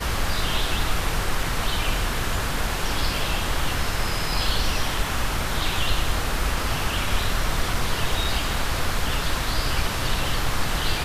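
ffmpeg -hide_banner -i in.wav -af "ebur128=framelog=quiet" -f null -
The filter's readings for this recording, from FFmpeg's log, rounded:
Integrated loudness:
  I:         -25.3 LUFS
  Threshold: -35.3 LUFS
Loudness range:
  LRA:         0.5 LU
  Threshold: -45.3 LUFS
  LRA low:   -25.5 LUFS
  LRA high:  -25.0 LUFS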